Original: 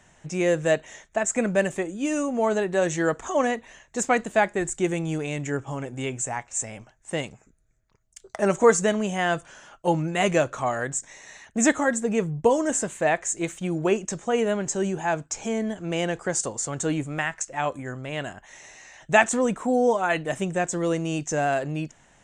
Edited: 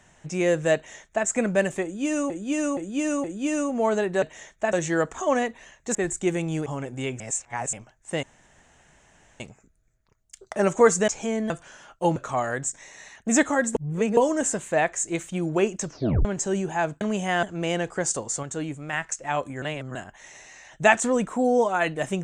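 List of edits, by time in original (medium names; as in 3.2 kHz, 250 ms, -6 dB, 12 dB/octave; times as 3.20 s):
0.75–1.26 s: copy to 2.81 s
1.83–2.30 s: loop, 4 plays
4.03–4.52 s: delete
5.23–5.66 s: delete
6.20–6.73 s: reverse
7.23 s: insert room tone 1.17 s
8.91–9.33 s: swap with 15.30–15.72 s
9.99–10.45 s: delete
12.04–12.46 s: reverse
14.15 s: tape stop 0.39 s
16.72–17.22 s: gain -5 dB
17.91–18.24 s: reverse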